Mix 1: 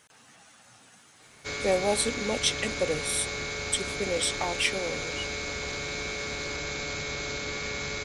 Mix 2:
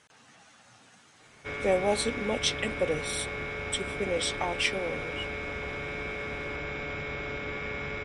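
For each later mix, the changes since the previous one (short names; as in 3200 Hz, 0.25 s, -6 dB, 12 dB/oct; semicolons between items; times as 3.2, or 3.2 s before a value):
background: add polynomial smoothing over 25 samples; master: add air absorption 54 m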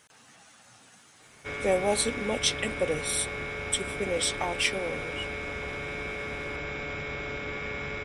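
master: remove air absorption 54 m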